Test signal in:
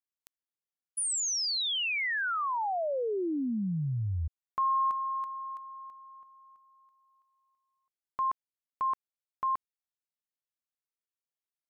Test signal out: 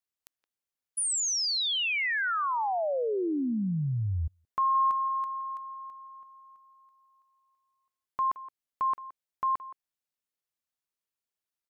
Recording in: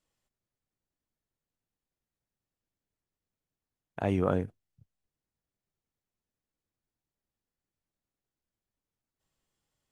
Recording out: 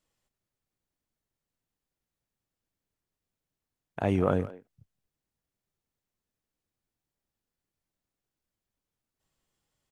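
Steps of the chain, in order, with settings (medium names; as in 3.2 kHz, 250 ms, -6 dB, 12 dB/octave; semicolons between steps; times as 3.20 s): speakerphone echo 170 ms, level -16 dB; trim +2 dB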